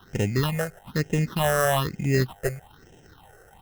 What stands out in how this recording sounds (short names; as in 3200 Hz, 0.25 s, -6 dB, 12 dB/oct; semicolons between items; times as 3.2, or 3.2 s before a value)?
aliases and images of a low sample rate 2300 Hz, jitter 0%; phasing stages 6, 1.1 Hz, lowest notch 240–1200 Hz